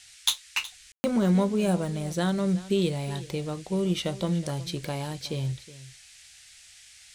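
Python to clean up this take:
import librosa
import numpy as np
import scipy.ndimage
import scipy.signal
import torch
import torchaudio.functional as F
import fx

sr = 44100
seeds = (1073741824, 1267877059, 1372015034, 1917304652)

y = fx.fix_ambience(x, sr, seeds[0], print_start_s=6.27, print_end_s=6.77, start_s=0.92, end_s=1.04)
y = fx.noise_reduce(y, sr, print_start_s=6.27, print_end_s=6.77, reduce_db=20.0)
y = fx.fix_echo_inverse(y, sr, delay_ms=368, level_db=-17.5)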